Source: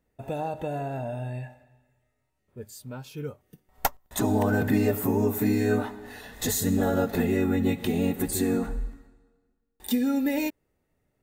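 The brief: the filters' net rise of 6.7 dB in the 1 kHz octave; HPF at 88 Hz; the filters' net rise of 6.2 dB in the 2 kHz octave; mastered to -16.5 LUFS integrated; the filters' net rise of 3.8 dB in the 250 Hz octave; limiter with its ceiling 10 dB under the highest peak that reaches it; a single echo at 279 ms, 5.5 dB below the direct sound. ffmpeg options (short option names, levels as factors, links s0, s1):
-af "highpass=88,equalizer=f=250:t=o:g=4,equalizer=f=1000:t=o:g=8,equalizer=f=2000:t=o:g=5,alimiter=limit=0.188:level=0:latency=1,aecho=1:1:279:0.531,volume=2.66"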